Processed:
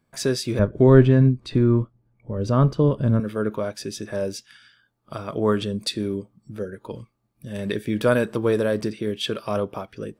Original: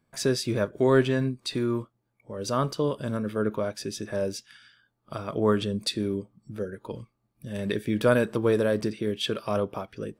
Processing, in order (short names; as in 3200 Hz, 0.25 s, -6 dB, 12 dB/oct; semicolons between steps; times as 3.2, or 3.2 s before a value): 0.59–3.2 RIAA curve playback; gain +2 dB